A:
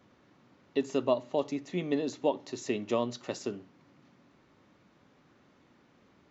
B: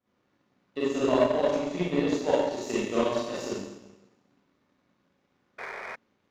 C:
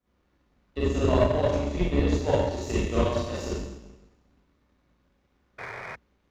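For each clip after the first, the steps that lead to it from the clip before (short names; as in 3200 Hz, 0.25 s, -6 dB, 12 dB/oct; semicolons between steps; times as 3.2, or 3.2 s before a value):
Schroeder reverb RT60 1.3 s, combs from 31 ms, DRR -9.5 dB; painted sound noise, 5.58–5.96, 360–2500 Hz -30 dBFS; power-law curve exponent 1.4; gain -1 dB
octaver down 2 oct, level +4 dB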